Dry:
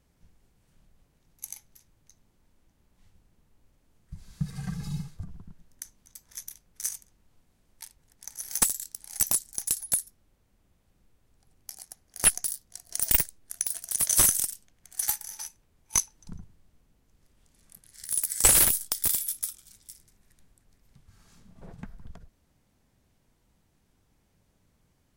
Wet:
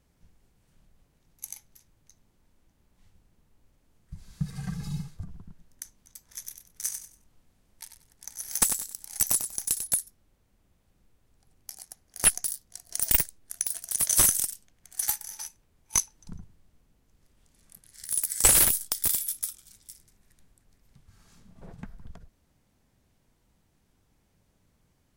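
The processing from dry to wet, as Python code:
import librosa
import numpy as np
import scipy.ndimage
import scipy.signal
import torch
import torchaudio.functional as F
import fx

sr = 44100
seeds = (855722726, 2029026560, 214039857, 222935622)

y = fx.echo_feedback(x, sr, ms=95, feedback_pct=24, wet_db=-8.5, at=(6.4, 9.86), fade=0.02)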